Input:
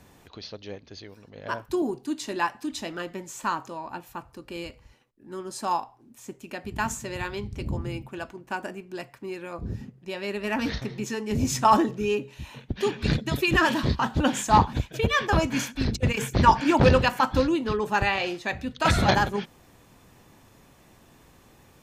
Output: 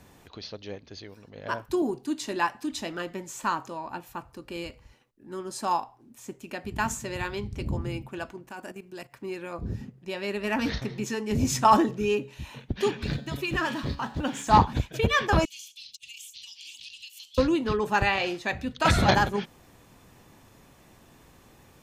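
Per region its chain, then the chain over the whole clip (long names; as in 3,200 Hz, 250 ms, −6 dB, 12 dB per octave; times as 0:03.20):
0:08.48–0:09.13: high-shelf EQ 6,400 Hz +8.5 dB + output level in coarse steps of 13 dB
0:13.04–0:14.47: mu-law and A-law mismatch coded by mu + high-shelf EQ 12,000 Hz −6 dB + tuned comb filter 140 Hz, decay 0.79 s
0:15.45–0:17.38: elliptic high-pass filter 2,900 Hz, stop band 50 dB + downward compressor, threshold −40 dBFS
whole clip: no processing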